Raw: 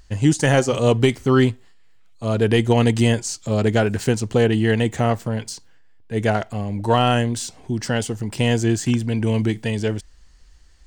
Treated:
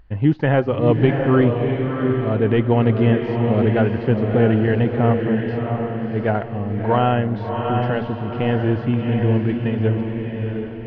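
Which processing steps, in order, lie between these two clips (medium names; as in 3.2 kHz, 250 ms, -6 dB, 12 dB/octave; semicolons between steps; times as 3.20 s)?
Gaussian low-pass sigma 3.5 samples; echo that smears into a reverb 686 ms, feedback 43%, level -3.5 dB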